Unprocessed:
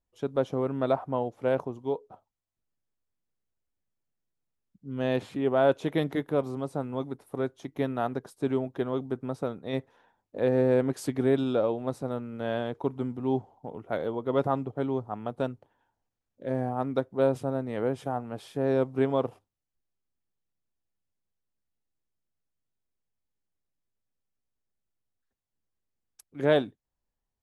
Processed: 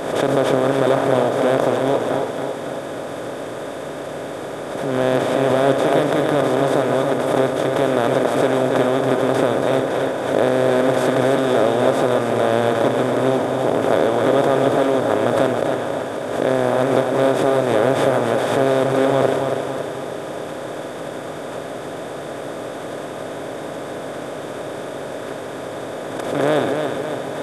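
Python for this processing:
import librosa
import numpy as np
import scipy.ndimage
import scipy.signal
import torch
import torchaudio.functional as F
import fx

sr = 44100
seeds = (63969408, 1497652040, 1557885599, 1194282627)

y = fx.bin_compress(x, sr, power=0.2)
y = fx.echo_feedback(y, sr, ms=278, feedback_pct=53, wet_db=-5.5)
y = fx.pre_swell(y, sr, db_per_s=48.0)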